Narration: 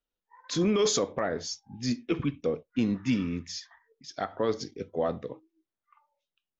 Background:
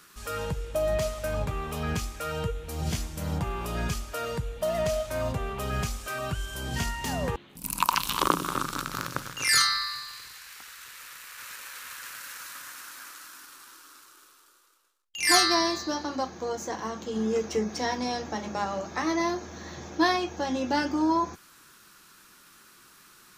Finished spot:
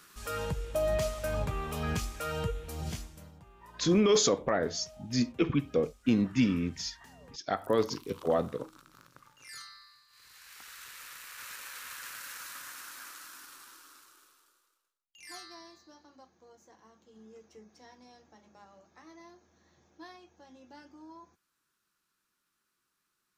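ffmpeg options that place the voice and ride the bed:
-filter_complex "[0:a]adelay=3300,volume=1.12[s0];[1:a]volume=10,afade=t=out:st=2.53:d=0.79:silence=0.0749894,afade=t=in:st=10.09:d=0.67:silence=0.0749894,afade=t=out:st=13.54:d=1.74:silence=0.0668344[s1];[s0][s1]amix=inputs=2:normalize=0"

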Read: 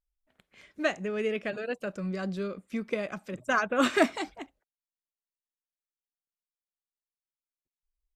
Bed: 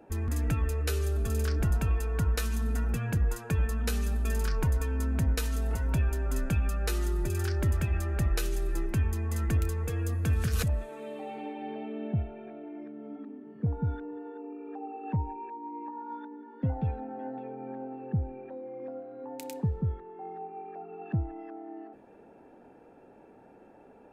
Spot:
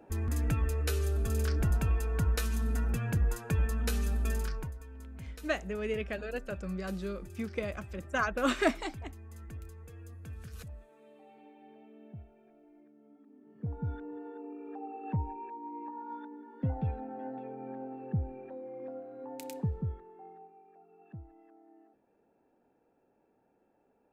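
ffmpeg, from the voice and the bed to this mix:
-filter_complex "[0:a]adelay=4650,volume=0.631[s0];[1:a]volume=4.73,afade=t=out:st=4.26:d=0.48:silence=0.158489,afade=t=in:st=13.24:d=0.92:silence=0.177828,afade=t=out:st=19.55:d=1.04:silence=0.188365[s1];[s0][s1]amix=inputs=2:normalize=0"

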